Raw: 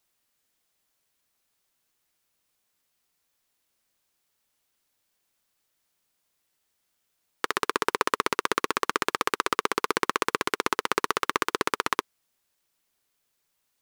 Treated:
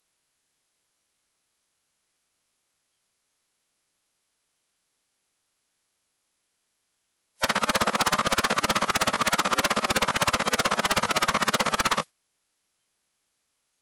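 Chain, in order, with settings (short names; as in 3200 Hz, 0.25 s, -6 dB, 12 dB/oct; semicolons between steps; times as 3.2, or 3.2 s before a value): formant-preserving pitch shift -11.5 st; sine folder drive 15 dB, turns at -9 dBFS; spectral noise reduction 10 dB; gain -7 dB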